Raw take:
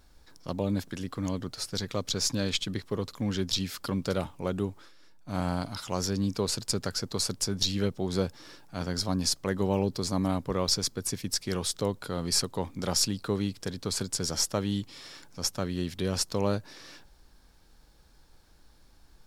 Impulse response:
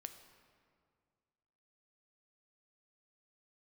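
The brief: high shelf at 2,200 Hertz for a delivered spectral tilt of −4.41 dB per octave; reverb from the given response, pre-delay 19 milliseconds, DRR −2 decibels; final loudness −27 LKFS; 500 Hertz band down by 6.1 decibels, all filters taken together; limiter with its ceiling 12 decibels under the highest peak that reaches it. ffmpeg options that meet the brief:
-filter_complex "[0:a]equalizer=frequency=500:width_type=o:gain=-7.5,highshelf=frequency=2200:gain=-4.5,alimiter=level_in=1dB:limit=-24dB:level=0:latency=1,volume=-1dB,asplit=2[link_01][link_02];[1:a]atrim=start_sample=2205,adelay=19[link_03];[link_02][link_03]afir=irnorm=-1:irlink=0,volume=6.5dB[link_04];[link_01][link_04]amix=inputs=2:normalize=0,volume=6.5dB"

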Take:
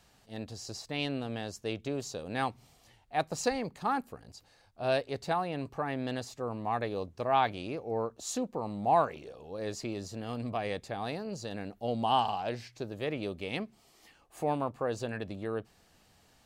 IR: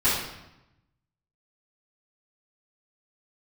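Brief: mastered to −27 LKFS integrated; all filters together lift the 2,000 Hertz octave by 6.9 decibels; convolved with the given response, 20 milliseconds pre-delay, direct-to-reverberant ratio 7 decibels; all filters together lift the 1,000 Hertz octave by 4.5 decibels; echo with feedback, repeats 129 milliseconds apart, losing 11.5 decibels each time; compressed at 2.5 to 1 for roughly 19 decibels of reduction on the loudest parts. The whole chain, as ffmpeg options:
-filter_complex "[0:a]equalizer=frequency=1000:width_type=o:gain=4.5,equalizer=frequency=2000:width_type=o:gain=7.5,acompressor=threshold=-47dB:ratio=2.5,aecho=1:1:129|258|387:0.266|0.0718|0.0194,asplit=2[link_01][link_02];[1:a]atrim=start_sample=2205,adelay=20[link_03];[link_02][link_03]afir=irnorm=-1:irlink=0,volume=-22dB[link_04];[link_01][link_04]amix=inputs=2:normalize=0,volume=17dB"

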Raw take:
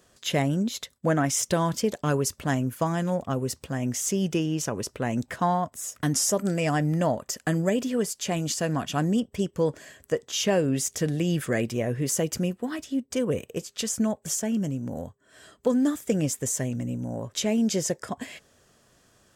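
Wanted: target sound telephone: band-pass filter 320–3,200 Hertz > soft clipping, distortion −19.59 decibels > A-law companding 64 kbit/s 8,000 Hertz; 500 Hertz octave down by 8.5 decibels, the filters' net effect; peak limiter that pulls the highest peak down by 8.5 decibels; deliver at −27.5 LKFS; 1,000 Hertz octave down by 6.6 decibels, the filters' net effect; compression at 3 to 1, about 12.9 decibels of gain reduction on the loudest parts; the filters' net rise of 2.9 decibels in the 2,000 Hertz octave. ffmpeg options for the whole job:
ffmpeg -i in.wav -af "equalizer=frequency=500:width_type=o:gain=-8,equalizer=frequency=1000:width_type=o:gain=-7,equalizer=frequency=2000:width_type=o:gain=7,acompressor=threshold=-40dB:ratio=3,alimiter=level_in=8dB:limit=-24dB:level=0:latency=1,volume=-8dB,highpass=320,lowpass=3200,asoftclip=threshold=-37dB,volume=21.5dB" -ar 8000 -c:a pcm_alaw out.wav

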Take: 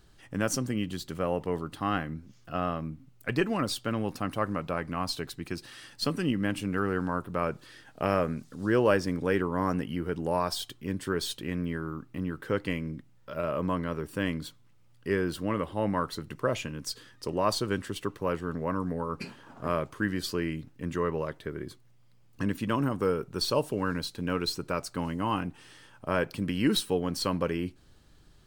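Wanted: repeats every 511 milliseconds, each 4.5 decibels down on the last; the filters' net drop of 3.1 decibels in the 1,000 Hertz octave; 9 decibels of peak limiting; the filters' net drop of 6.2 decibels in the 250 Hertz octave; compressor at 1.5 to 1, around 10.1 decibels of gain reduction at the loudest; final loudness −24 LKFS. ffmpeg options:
ffmpeg -i in.wav -af "equalizer=frequency=250:width_type=o:gain=-8.5,equalizer=frequency=1000:width_type=o:gain=-3.5,acompressor=threshold=-52dB:ratio=1.5,alimiter=level_in=7.5dB:limit=-24dB:level=0:latency=1,volume=-7.5dB,aecho=1:1:511|1022|1533|2044|2555|3066|3577|4088|4599:0.596|0.357|0.214|0.129|0.0772|0.0463|0.0278|0.0167|0.01,volume=18.5dB" out.wav

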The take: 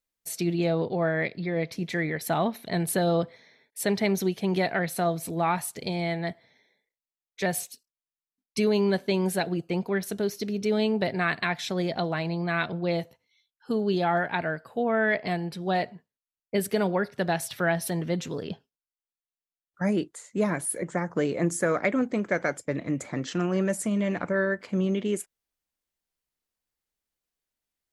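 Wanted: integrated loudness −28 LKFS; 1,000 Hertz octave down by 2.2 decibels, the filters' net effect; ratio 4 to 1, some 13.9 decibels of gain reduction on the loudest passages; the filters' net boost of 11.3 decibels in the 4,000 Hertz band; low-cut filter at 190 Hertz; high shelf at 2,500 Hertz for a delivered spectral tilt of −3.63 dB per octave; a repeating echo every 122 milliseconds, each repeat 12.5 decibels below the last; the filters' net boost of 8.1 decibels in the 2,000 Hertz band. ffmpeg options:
ffmpeg -i in.wav -af "highpass=190,equalizer=frequency=1000:width_type=o:gain=-7,equalizer=frequency=2000:width_type=o:gain=8,highshelf=frequency=2500:gain=6.5,equalizer=frequency=4000:width_type=o:gain=6,acompressor=threshold=-31dB:ratio=4,aecho=1:1:122|244|366:0.237|0.0569|0.0137,volume=5.5dB" out.wav

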